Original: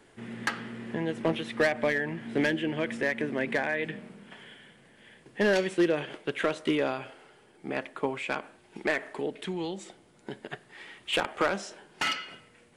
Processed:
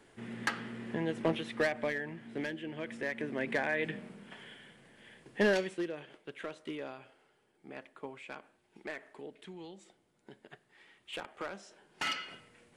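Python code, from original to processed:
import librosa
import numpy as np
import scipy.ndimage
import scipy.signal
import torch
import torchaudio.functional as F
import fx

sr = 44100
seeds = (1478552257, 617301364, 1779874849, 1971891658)

y = fx.gain(x, sr, db=fx.line((1.26, -3.0), (2.56, -12.0), (3.8, -2.0), (5.44, -2.0), (5.91, -14.0), (11.63, -14.0), (12.2, -3.0)))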